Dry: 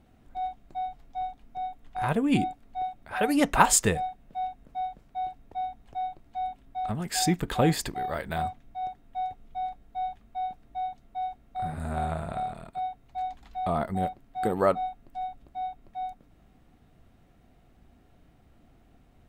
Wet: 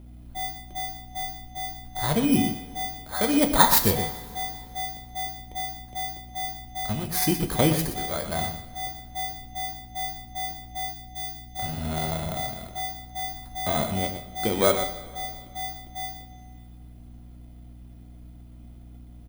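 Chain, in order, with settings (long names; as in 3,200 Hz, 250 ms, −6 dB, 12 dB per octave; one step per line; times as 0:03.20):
samples in bit-reversed order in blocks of 16 samples
on a send: single-tap delay 121 ms −9.5 dB
on the sum: mains hum 60 Hz, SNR 17 dB
0:10.91–0:11.59: parametric band 1,100 Hz −10 dB 1.3 octaves
coupled-rooms reverb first 0.37 s, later 2.5 s, from −17 dB, DRR 6.5 dB
level +1.5 dB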